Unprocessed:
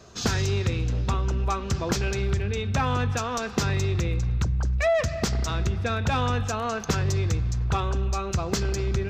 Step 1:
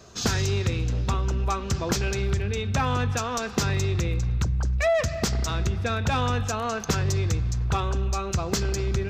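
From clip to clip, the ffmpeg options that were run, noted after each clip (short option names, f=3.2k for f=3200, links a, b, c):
-af "highshelf=f=6.8k:g=5"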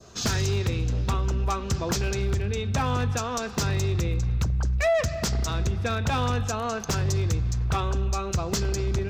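-af "aeval=exprs='0.133*(abs(mod(val(0)/0.133+3,4)-2)-1)':c=same,adynamicequalizer=threshold=0.00708:dfrequency=2100:dqfactor=0.8:tfrequency=2100:tqfactor=0.8:attack=5:release=100:ratio=0.375:range=1.5:mode=cutabove:tftype=bell"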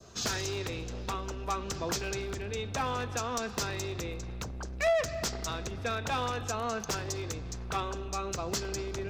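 -filter_complex "[0:a]acrossover=split=300|2300[a][b][c];[a]asoftclip=type=hard:threshold=-35.5dB[d];[d][b][c]amix=inputs=3:normalize=0,aeval=exprs='0.2*(cos(1*acos(clip(val(0)/0.2,-1,1)))-cos(1*PI/2))+0.0562*(cos(3*acos(clip(val(0)/0.2,-1,1)))-cos(3*PI/2))+0.0282*(cos(5*acos(clip(val(0)/0.2,-1,1)))-cos(5*PI/2))+0.00562*(cos(7*acos(clip(val(0)/0.2,-1,1)))-cos(7*PI/2))':c=same"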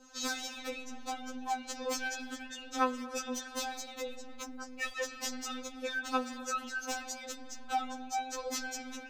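-af "afftfilt=real='re*3.46*eq(mod(b,12),0)':imag='im*3.46*eq(mod(b,12),0)':win_size=2048:overlap=0.75"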